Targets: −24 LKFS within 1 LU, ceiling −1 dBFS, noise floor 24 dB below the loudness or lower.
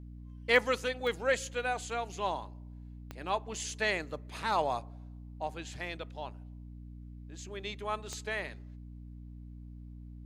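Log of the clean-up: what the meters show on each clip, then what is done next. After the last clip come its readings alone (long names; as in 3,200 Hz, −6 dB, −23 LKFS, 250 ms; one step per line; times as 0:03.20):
number of clicks 4; mains hum 60 Hz; hum harmonics up to 300 Hz; level of the hum −44 dBFS; integrated loudness −34.0 LKFS; sample peak −11.5 dBFS; target loudness −24.0 LKFS
→ click removal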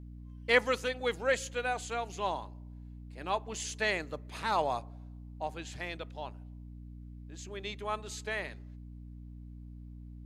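number of clicks 0; mains hum 60 Hz; hum harmonics up to 300 Hz; level of the hum −44 dBFS
→ hum removal 60 Hz, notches 5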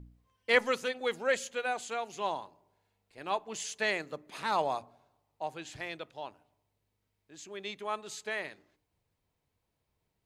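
mains hum none found; integrated loudness −34.0 LKFS; sample peak −12.0 dBFS; target loudness −24.0 LKFS
→ level +10 dB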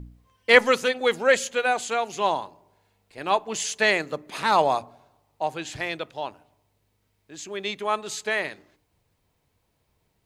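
integrated loudness −24.0 LKFS; sample peak −2.0 dBFS; background noise floor −72 dBFS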